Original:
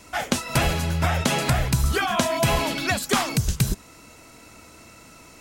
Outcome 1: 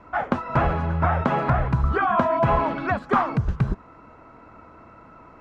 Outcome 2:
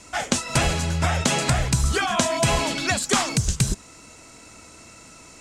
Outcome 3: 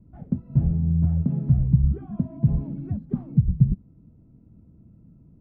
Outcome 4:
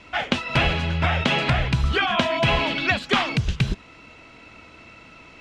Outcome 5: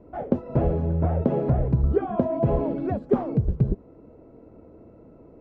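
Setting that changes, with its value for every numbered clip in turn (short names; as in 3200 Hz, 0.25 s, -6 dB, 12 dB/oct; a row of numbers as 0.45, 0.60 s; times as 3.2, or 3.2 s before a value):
synth low-pass, frequency: 1200, 7900, 170, 3000, 470 Hz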